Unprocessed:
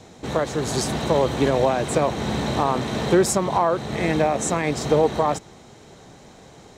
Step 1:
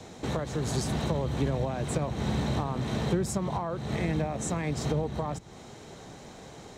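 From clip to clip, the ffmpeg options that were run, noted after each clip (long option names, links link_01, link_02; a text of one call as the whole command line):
ffmpeg -i in.wav -filter_complex "[0:a]acrossover=split=180[link_01][link_02];[link_02]acompressor=threshold=-32dB:ratio=5[link_03];[link_01][link_03]amix=inputs=2:normalize=0" out.wav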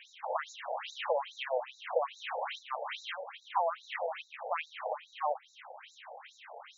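ffmpeg -i in.wav -af "highshelf=frequency=3500:width_type=q:width=3:gain=-6.5,afftfilt=real='re*between(b*sr/1024,630*pow(5300/630,0.5+0.5*sin(2*PI*2.4*pts/sr))/1.41,630*pow(5300/630,0.5+0.5*sin(2*PI*2.4*pts/sr))*1.41)':imag='im*between(b*sr/1024,630*pow(5300/630,0.5+0.5*sin(2*PI*2.4*pts/sr))/1.41,630*pow(5300/630,0.5+0.5*sin(2*PI*2.4*pts/sr))*1.41)':win_size=1024:overlap=0.75,volume=5.5dB" out.wav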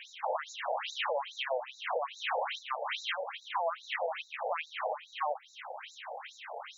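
ffmpeg -i in.wav -af "alimiter=level_in=5.5dB:limit=-24dB:level=0:latency=1:release=256,volume=-5.5dB,volume=6dB" out.wav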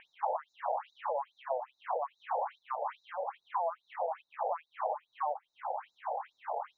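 ffmpeg -i in.wav -af "acompressor=threshold=-44dB:ratio=3,lowpass=frequency=890:width_type=q:width=2.1,volume=5.5dB" out.wav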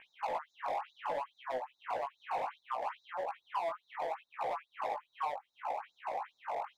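ffmpeg -i in.wav -filter_complex "[0:a]acrossover=split=1100[link_01][link_02];[link_01]asoftclip=type=hard:threshold=-36dB[link_03];[link_03][link_02]amix=inputs=2:normalize=0,flanger=delay=15.5:depth=5.6:speed=0.66,volume=3.5dB" out.wav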